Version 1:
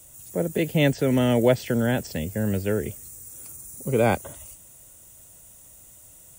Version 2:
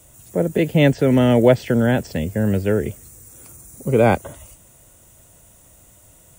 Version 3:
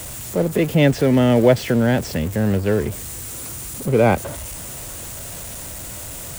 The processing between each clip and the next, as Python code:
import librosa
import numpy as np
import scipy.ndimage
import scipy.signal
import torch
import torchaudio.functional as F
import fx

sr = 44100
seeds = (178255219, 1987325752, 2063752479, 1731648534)

y1 = fx.high_shelf(x, sr, hz=4000.0, db=-9.5)
y1 = y1 * 10.0 ** (6.0 / 20.0)
y2 = y1 + 0.5 * 10.0 ** (-26.5 / 20.0) * np.sign(y1)
y2 = y2 * 10.0 ** (-1.0 / 20.0)